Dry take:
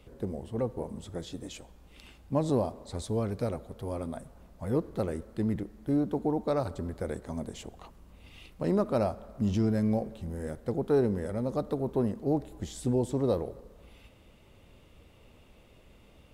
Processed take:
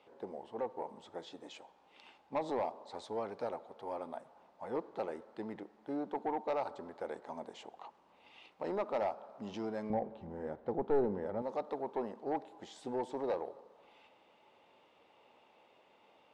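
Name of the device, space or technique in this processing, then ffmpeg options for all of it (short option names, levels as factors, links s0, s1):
intercom: -filter_complex "[0:a]highpass=400,lowpass=4300,equalizer=f=860:t=o:w=0.48:g=10.5,asoftclip=type=tanh:threshold=0.0794,asettb=1/sr,asplit=3[s0][s1][s2];[s0]atrim=end=9.904[s3];[s1]atrim=start=9.9:end=11.42,asetpts=PTS-STARTPTS,afade=t=in:d=0.004:c=qsin,afade=t=out:st=1.516:d=0.004:c=qsin,aemphasis=mode=reproduction:type=riaa[s4];[s2]atrim=start=11.416[s5];[s3][s4]acrossfade=d=0.004:c1=hsin:c2=qsin[s6];[s6][s5]acrossfade=d=0.004:c1=qsin:c2=hsin,volume=0.596"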